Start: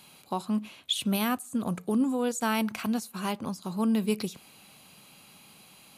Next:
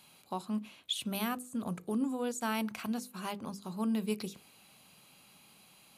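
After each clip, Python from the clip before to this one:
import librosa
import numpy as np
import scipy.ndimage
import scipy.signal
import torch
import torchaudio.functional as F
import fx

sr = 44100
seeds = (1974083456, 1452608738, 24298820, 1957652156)

y = fx.hum_notches(x, sr, base_hz=50, count=10)
y = F.gain(torch.from_numpy(y), -6.0).numpy()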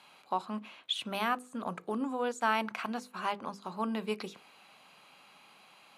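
y = fx.bandpass_q(x, sr, hz=1200.0, q=0.72)
y = F.gain(torch.from_numpy(y), 8.0).numpy()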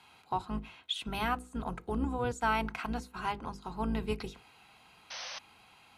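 y = fx.octave_divider(x, sr, octaves=2, level_db=2.0)
y = fx.notch_comb(y, sr, f0_hz=580.0)
y = fx.spec_paint(y, sr, seeds[0], shape='noise', start_s=5.1, length_s=0.29, low_hz=490.0, high_hz=6300.0, level_db=-42.0)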